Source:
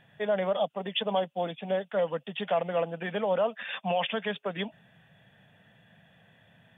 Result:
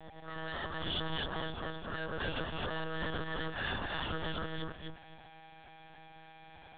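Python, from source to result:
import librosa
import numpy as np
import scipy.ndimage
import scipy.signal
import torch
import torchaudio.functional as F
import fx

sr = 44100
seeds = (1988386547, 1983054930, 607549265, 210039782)

y = fx.spec_swells(x, sr, rise_s=0.54)
y = scipy.signal.sosfilt(scipy.signal.butter(4, 53.0, 'highpass', fs=sr, output='sos'), y)
y = fx.peak_eq(y, sr, hz=570.0, db=8.5, octaves=1.1)
y = fx.auto_swell(y, sr, attack_ms=291.0)
y = fx.tube_stage(y, sr, drive_db=28.0, bias=0.4)
y = fx.fixed_phaser(y, sr, hz=2300.0, stages=6)
y = y + 10.0 ** (-51.0 / 20.0) * np.sin(2.0 * np.pi * 790.0 * np.arange(len(y)) / sr)
y = np.where(np.abs(y) >= 10.0 ** (-54.5 / 20.0), y, 0.0)
y = fx.echo_feedback(y, sr, ms=254, feedback_pct=21, wet_db=-3.0)
y = fx.lpc_monotone(y, sr, seeds[0], pitch_hz=160.0, order=10)
y = fx.band_squash(y, sr, depth_pct=100, at=(2.2, 4.42))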